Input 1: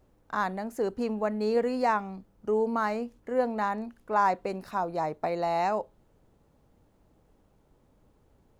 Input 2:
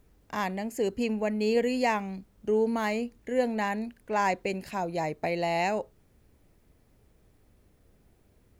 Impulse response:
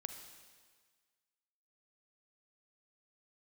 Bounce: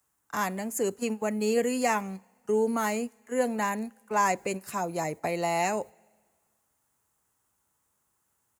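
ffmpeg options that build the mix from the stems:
-filter_complex "[0:a]highpass=frequency=1000:width=0.5412,highpass=frequency=1000:width=1.3066,bandreject=frequency=2300:width=25,volume=-2.5dB,asplit=2[link_01][link_02];[1:a]adelay=7.2,volume=-1dB,asplit=2[link_03][link_04];[link_04]volume=-18dB[link_05];[link_02]apad=whole_len=379414[link_06];[link_03][link_06]sidechaingate=range=-33dB:threshold=-53dB:ratio=16:detection=peak[link_07];[2:a]atrim=start_sample=2205[link_08];[link_05][link_08]afir=irnorm=-1:irlink=0[link_09];[link_01][link_07][link_09]amix=inputs=3:normalize=0,highpass=88,highshelf=frequency=5800:width_type=q:width=1.5:gain=10.5"

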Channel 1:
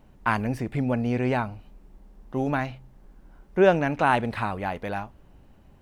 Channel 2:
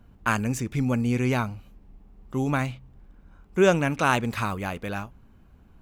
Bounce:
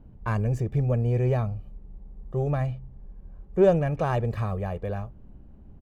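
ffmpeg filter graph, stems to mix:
ffmpeg -i stem1.wav -i stem2.wav -filter_complex "[0:a]lowpass=frequency=4000:width=0.5412,lowpass=frequency=4000:width=1.3066,volume=-6dB[link_01];[1:a]equalizer=frequency=4700:width_type=o:width=0.21:gain=3,asoftclip=type=tanh:threshold=-16.5dB,adelay=1.6,volume=-7dB[link_02];[link_01][link_02]amix=inputs=2:normalize=0,tiltshelf=frequency=770:gain=9.5" out.wav

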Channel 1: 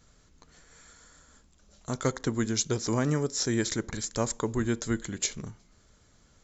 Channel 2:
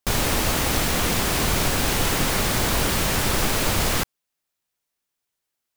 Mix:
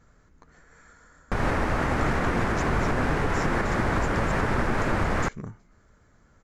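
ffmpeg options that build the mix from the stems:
ffmpeg -i stem1.wav -i stem2.wav -filter_complex "[0:a]acompressor=threshold=-28dB:ratio=6,volume=2.5dB[link_01];[1:a]lowpass=7900,aemphasis=mode=reproduction:type=cd,adelay=1250,volume=1.5dB[link_02];[link_01][link_02]amix=inputs=2:normalize=0,highshelf=frequency=2400:width_type=q:width=1.5:gain=-10,alimiter=limit=-14.5dB:level=0:latency=1:release=208" out.wav

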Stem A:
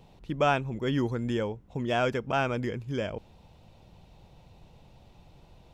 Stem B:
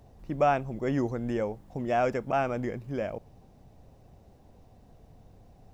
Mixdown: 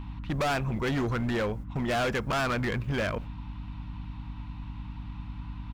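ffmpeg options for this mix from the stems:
ffmpeg -i stem1.wav -i stem2.wav -filter_complex "[0:a]firequalizer=gain_entry='entry(250,0);entry(400,-28);entry(980,15);entry(6700,-8)':delay=0.05:min_phase=1,aeval=exprs='val(0)+0.00794*(sin(2*PI*60*n/s)+sin(2*PI*2*60*n/s)/2+sin(2*PI*3*60*n/s)/3+sin(2*PI*4*60*n/s)/4+sin(2*PI*5*60*n/s)/5)':channel_layout=same,volume=1.5dB[link_01];[1:a]agate=range=-24dB:threshold=-44dB:ratio=16:detection=peak,aeval=exprs='val(0)+0.00794*(sin(2*PI*50*n/s)+sin(2*PI*2*50*n/s)/2+sin(2*PI*3*50*n/s)/3+sin(2*PI*4*50*n/s)/4+sin(2*PI*5*50*n/s)/5)':channel_layout=same,volume=3dB,asplit=2[link_02][link_03];[link_03]apad=whole_len=257208[link_04];[link_01][link_04]sidechaincompress=threshold=-30dB:ratio=8:attack=38:release=154[link_05];[link_05][link_02]amix=inputs=2:normalize=0,asoftclip=type=hard:threshold=-25dB" out.wav

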